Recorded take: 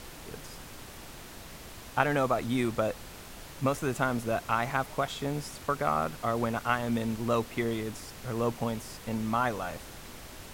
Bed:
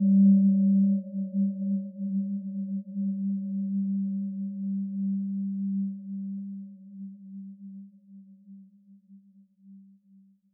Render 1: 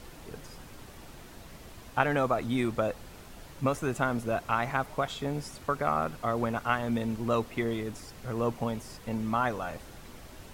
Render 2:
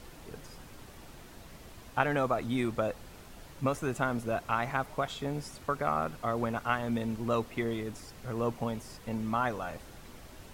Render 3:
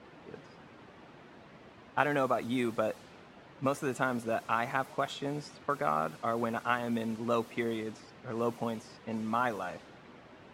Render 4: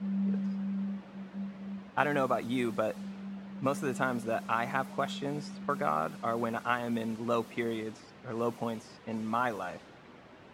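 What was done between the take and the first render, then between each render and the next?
noise reduction 6 dB, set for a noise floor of -47 dBFS
trim -2 dB
high-pass 160 Hz 12 dB/octave; level-controlled noise filter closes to 2.2 kHz, open at -28.5 dBFS
add bed -12.5 dB

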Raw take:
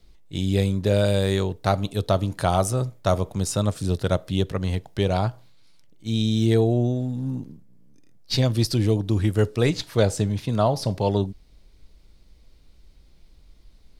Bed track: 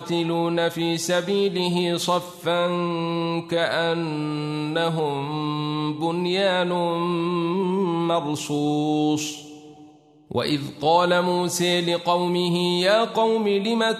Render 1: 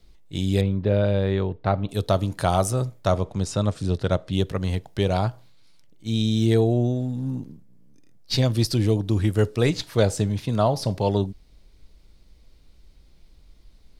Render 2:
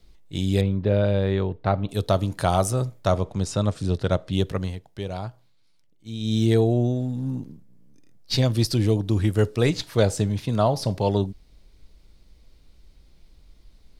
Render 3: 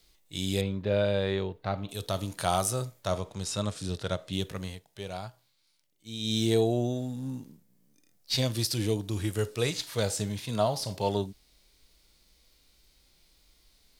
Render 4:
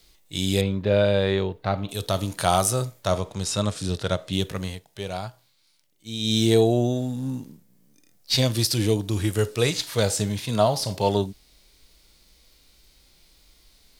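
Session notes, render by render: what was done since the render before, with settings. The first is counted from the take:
0.61–1.89 s: distance through air 350 m; 3.07–4.33 s: distance through air 63 m
4.60–6.34 s: dip -9 dB, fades 0.14 s
harmonic-percussive split percussive -10 dB; tilt EQ +3 dB/octave
trim +6.5 dB

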